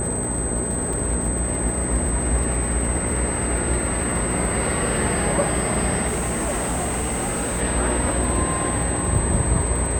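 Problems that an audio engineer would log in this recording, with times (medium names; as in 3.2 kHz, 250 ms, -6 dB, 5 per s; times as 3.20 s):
buzz 60 Hz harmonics 11 -28 dBFS
crackle 130 per s -31 dBFS
whine 8.2 kHz -26 dBFS
0.93 s: dropout 3.4 ms
6.07–7.62 s: clipped -20.5 dBFS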